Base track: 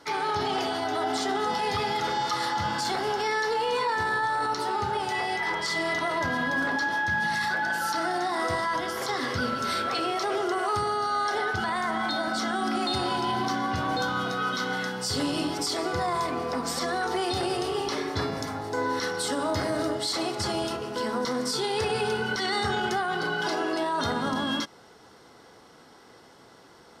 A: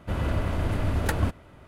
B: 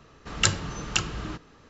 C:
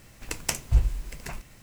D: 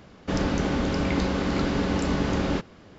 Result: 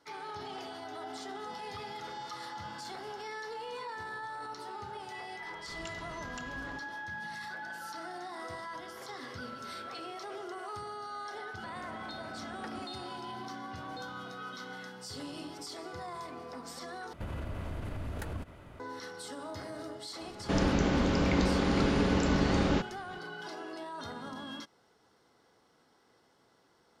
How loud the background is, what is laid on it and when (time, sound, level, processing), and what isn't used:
base track −14.5 dB
0:05.42: mix in B −13 dB + downward compressor, threshold −29 dBFS
0:11.55: mix in A −15.5 dB + band-pass filter 210–3,200 Hz
0:17.13: overwrite with A −1 dB + downward compressor, threshold −34 dBFS
0:20.21: mix in D −2.5 dB
not used: C

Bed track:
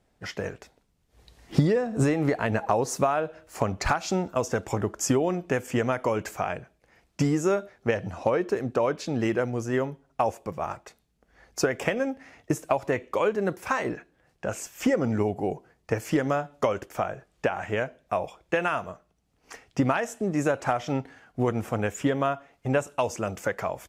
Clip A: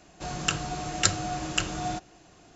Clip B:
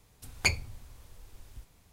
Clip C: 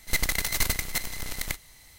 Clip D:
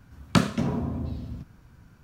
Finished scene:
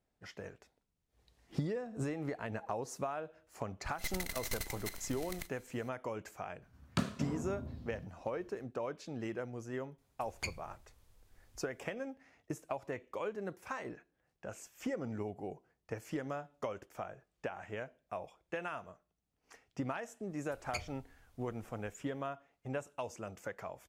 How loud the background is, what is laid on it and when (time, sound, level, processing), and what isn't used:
bed track −14.5 dB
0:03.91: mix in C −14 dB
0:06.62: mix in D −13 dB
0:09.98: mix in B −13.5 dB
0:20.29: mix in B −15 dB
not used: A

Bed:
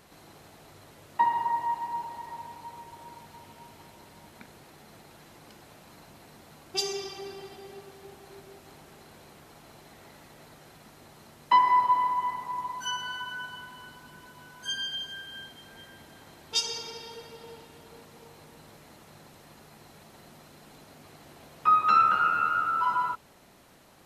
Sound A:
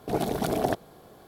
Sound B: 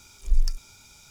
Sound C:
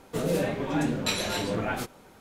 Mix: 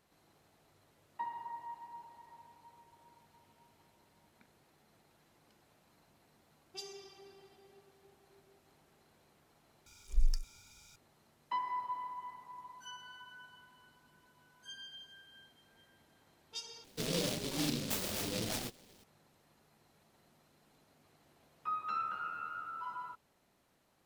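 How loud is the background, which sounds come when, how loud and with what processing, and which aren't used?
bed −16.5 dB
0:09.86: overwrite with B −8 dB
0:16.84: overwrite with C −8.5 dB + short delay modulated by noise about 3,800 Hz, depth 0.25 ms
not used: A

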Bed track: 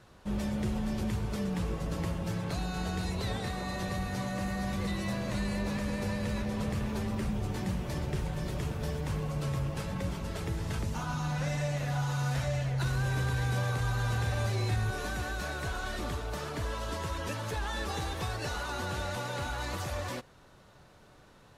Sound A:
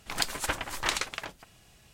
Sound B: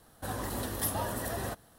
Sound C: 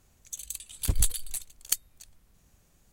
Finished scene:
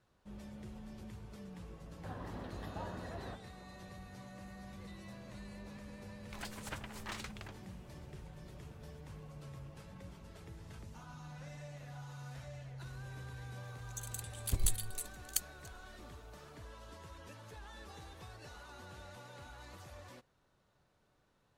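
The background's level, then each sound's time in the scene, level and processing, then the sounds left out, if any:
bed track −17 dB
0:01.81: mix in B −9 dB + high-frequency loss of the air 300 metres
0:06.23: mix in A −14 dB + slew-rate limiting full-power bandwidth 200 Hz
0:13.64: mix in C −7.5 dB

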